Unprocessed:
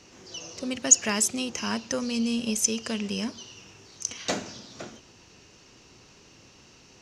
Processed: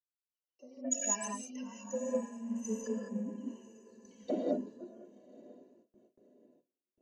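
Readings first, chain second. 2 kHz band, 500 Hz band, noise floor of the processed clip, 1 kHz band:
−17.5 dB, −3.0 dB, below −85 dBFS, −8.0 dB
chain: expanding power law on the bin magnitudes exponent 2.9
in parallel at −4.5 dB: gain into a clipping stage and back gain 18.5 dB
on the sum: high-pass filter 180 Hz 12 dB per octave
dynamic equaliser 470 Hz, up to −5 dB, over −47 dBFS, Q 4.7
harmonic generator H 3 −19 dB, 6 −36 dB, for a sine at −3 dBFS
reverb whose tail is shaped and stops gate 230 ms rising, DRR −2.5 dB
band-pass filter sweep 750 Hz → 370 Hz, 0:01.82–0:03.49
parametric band 4,200 Hz +12 dB 0.31 octaves
notch filter 680 Hz, Q 22
on a send: feedback delay with all-pass diffusion 1,003 ms, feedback 53%, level −10.5 dB
on the sum: noise gate with hold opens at −43 dBFS
multiband upward and downward expander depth 100%

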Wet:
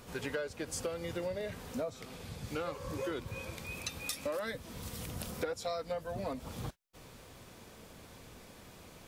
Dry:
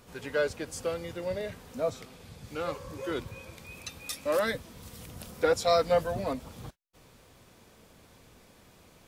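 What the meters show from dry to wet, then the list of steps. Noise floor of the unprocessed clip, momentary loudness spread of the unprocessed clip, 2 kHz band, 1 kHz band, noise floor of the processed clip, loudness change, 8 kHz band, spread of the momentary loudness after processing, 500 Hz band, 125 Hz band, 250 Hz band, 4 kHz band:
−58 dBFS, 20 LU, −6.0 dB, −9.0 dB, −55 dBFS, −8.0 dB, −1.5 dB, 16 LU, −8.5 dB, −1.5 dB, −3.0 dB, −5.0 dB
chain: downward compressor 16 to 1, threshold −37 dBFS, peak gain reduction 18 dB
level +3.5 dB

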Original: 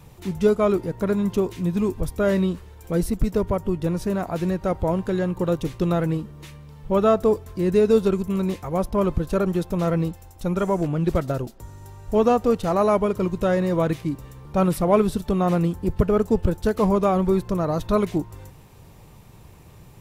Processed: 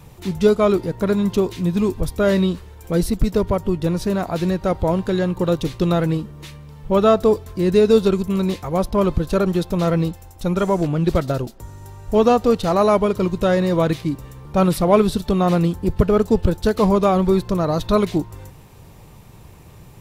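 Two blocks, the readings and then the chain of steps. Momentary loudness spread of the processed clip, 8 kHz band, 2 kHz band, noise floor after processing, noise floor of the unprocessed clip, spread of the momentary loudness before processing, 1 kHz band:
9 LU, +4.5 dB, +4.5 dB, −44 dBFS, −47 dBFS, 9 LU, +3.5 dB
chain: dynamic equaliser 4,100 Hz, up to +7 dB, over −53 dBFS, Q 1.7
level +3.5 dB

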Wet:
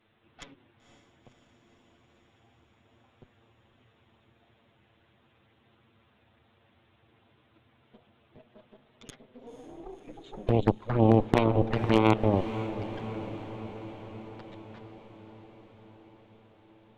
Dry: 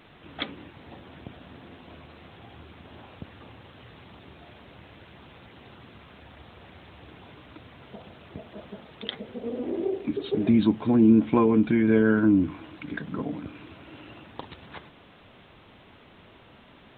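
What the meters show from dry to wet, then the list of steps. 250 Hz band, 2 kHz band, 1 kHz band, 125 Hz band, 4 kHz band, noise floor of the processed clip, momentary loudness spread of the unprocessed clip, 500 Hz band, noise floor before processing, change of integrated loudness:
−7.5 dB, −5.0 dB, +3.5 dB, +3.0 dB, −4.0 dB, −66 dBFS, 24 LU, −1.0 dB, −53 dBFS, −3.0 dB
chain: in parallel at +2 dB: output level in coarse steps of 21 dB
on the sum: harmonic generator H 3 −8 dB, 5 −38 dB, 6 −25 dB, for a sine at −2 dBFS
flanger swept by the level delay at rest 9.2 ms, full sweep at −21 dBFS
wave folding −9.5 dBFS
feedback delay with all-pass diffusion 515 ms, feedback 67%, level −12.5 dB
level +2 dB

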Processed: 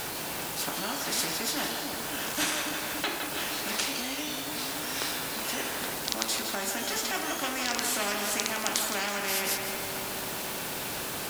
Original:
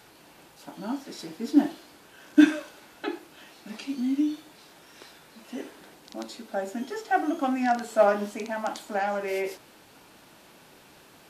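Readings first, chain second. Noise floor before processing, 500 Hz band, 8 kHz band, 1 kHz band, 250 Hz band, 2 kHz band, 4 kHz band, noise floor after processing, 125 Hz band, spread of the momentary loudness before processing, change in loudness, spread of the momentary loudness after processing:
−54 dBFS, −6.5 dB, +17.5 dB, −3.0 dB, −11.0 dB, +4.0 dB, +13.5 dB, −35 dBFS, can't be measured, 19 LU, −2.5 dB, 5 LU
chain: high-shelf EQ 8,400 Hz +8 dB
background noise white −60 dBFS
in parallel at −1.5 dB: downward compressor, threshold −39 dBFS, peak gain reduction 25.5 dB
on the sum: echo with a time of its own for lows and highs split 600 Hz, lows 282 ms, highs 163 ms, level −12.5 dB
every bin compressed towards the loudest bin 4 to 1

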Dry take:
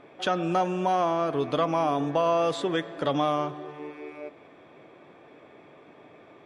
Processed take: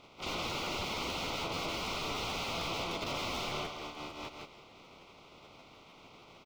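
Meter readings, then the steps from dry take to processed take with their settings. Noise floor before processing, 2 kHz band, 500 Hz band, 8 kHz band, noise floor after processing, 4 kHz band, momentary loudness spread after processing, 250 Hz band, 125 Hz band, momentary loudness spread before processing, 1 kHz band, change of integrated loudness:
−53 dBFS, −1.5 dB, −15.0 dB, +3.5 dB, −57 dBFS, +2.0 dB, 20 LU, −13.0 dB, −9.5 dB, 16 LU, −12.0 dB, −10.0 dB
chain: compressing power law on the bin magnitudes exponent 0.16
repeating echo 165 ms, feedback 24%, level −3 dB
wrap-around overflow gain 22 dB
Butterworth band-reject 1,700 Hz, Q 2.3
high-frequency loss of the air 230 metres
regular buffer underruns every 0.15 s, samples 512, repeat, from 0:00.49

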